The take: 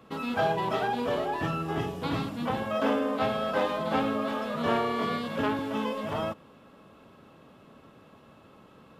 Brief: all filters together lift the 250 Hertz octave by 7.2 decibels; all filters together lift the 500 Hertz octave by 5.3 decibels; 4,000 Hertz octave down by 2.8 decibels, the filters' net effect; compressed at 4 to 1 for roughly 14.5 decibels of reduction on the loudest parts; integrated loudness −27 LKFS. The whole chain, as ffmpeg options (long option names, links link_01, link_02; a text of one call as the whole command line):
ffmpeg -i in.wav -af "equalizer=frequency=250:width_type=o:gain=7,equalizer=frequency=500:width_type=o:gain=5,equalizer=frequency=4000:width_type=o:gain=-4,acompressor=threshold=-35dB:ratio=4,volume=9.5dB" out.wav